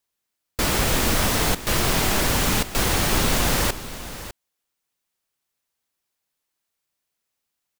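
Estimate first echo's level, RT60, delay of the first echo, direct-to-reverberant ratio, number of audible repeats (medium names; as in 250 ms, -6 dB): -14.0 dB, no reverb, 602 ms, no reverb, 1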